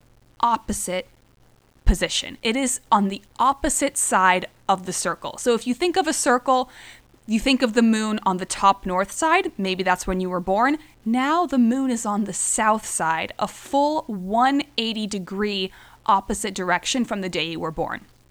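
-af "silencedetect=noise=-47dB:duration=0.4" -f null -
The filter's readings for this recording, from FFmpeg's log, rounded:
silence_start: 1.14
silence_end: 1.77 | silence_duration: 0.63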